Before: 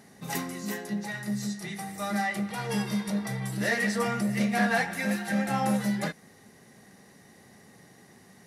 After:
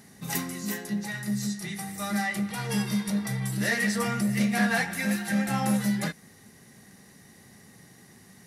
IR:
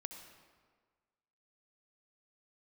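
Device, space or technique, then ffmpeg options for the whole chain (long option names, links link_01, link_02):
smiley-face EQ: -af "lowshelf=frequency=130:gain=4.5,equalizer=frequency=600:width_type=o:width=1.7:gain=-5,highshelf=frequency=7700:gain=5.5,volume=1.5dB"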